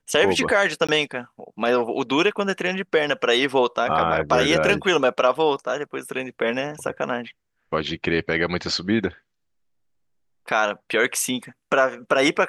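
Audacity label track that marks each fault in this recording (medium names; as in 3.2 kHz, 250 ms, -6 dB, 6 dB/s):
0.870000	0.890000	dropout 16 ms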